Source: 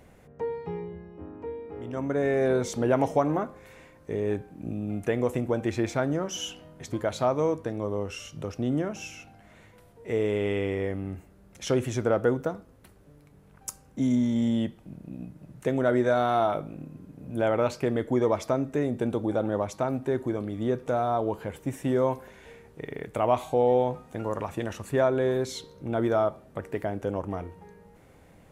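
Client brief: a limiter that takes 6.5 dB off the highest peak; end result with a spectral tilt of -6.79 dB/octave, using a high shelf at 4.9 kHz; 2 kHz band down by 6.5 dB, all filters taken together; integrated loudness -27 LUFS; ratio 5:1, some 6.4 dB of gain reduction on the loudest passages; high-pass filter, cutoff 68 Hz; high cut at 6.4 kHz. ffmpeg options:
-af "highpass=68,lowpass=6400,equalizer=f=2000:t=o:g=-8,highshelf=f=4900:g=-7.5,acompressor=threshold=0.0501:ratio=5,volume=2.37,alimiter=limit=0.178:level=0:latency=1"

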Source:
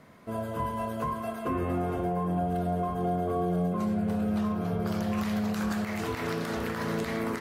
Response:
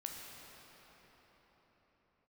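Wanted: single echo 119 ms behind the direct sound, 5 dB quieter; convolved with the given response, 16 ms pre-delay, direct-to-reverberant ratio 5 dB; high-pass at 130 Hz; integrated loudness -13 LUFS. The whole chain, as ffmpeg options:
-filter_complex "[0:a]highpass=130,aecho=1:1:119:0.562,asplit=2[s0][s1];[1:a]atrim=start_sample=2205,adelay=16[s2];[s1][s2]afir=irnorm=-1:irlink=0,volume=0.668[s3];[s0][s3]amix=inputs=2:normalize=0,volume=5.31"

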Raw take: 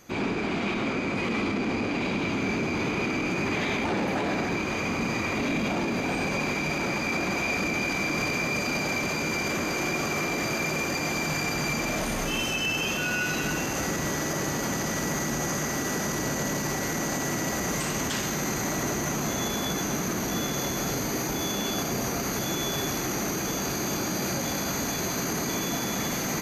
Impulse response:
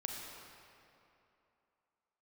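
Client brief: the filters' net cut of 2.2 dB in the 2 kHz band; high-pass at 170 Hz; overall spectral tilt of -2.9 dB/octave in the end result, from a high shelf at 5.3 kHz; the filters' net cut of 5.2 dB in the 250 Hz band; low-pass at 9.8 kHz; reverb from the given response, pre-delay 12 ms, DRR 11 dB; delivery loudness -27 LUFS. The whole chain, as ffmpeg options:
-filter_complex "[0:a]highpass=170,lowpass=9800,equalizer=f=250:t=o:g=-5.5,equalizer=f=2000:t=o:g=-4,highshelf=f=5300:g=7,asplit=2[s0][s1];[1:a]atrim=start_sample=2205,adelay=12[s2];[s1][s2]afir=irnorm=-1:irlink=0,volume=0.266[s3];[s0][s3]amix=inputs=2:normalize=0,volume=1.12"

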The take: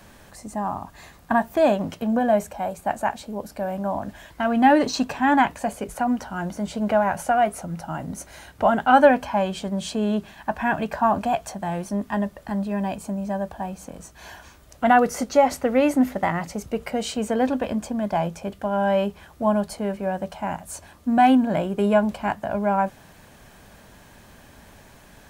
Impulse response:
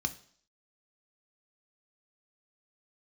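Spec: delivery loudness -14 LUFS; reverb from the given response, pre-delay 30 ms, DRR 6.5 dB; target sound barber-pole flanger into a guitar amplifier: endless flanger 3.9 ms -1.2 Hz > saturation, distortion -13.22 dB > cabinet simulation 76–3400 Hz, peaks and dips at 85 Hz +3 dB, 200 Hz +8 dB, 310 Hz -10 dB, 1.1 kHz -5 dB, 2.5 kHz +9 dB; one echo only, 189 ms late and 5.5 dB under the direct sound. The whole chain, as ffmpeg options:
-filter_complex "[0:a]aecho=1:1:189:0.531,asplit=2[s0][s1];[1:a]atrim=start_sample=2205,adelay=30[s2];[s1][s2]afir=irnorm=-1:irlink=0,volume=0.335[s3];[s0][s3]amix=inputs=2:normalize=0,asplit=2[s4][s5];[s5]adelay=3.9,afreqshift=-1.2[s6];[s4][s6]amix=inputs=2:normalize=1,asoftclip=threshold=0.168,highpass=76,equalizer=f=85:t=q:w=4:g=3,equalizer=f=200:t=q:w=4:g=8,equalizer=f=310:t=q:w=4:g=-10,equalizer=f=1100:t=q:w=4:g=-5,equalizer=f=2500:t=q:w=4:g=9,lowpass=f=3400:w=0.5412,lowpass=f=3400:w=1.3066,volume=3.55"

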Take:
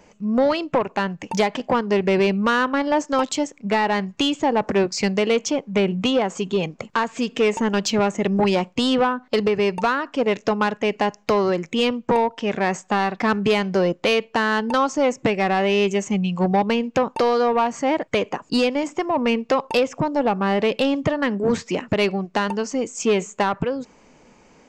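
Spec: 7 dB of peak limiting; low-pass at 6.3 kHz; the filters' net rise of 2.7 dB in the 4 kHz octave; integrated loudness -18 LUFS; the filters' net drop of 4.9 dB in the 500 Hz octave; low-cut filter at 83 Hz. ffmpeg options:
-af "highpass=83,lowpass=6300,equalizer=f=500:t=o:g=-6,equalizer=f=4000:t=o:g=4.5,volume=2.24,alimiter=limit=0.376:level=0:latency=1"

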